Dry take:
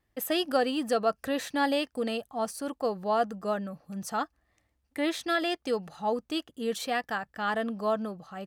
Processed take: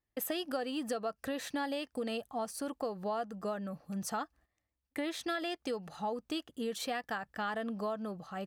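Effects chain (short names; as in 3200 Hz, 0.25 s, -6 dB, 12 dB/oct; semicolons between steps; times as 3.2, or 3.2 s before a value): gate -57 dBFS, range -13 dB; compressor, threshold -33 dBFS, peak gain reduction 12 dB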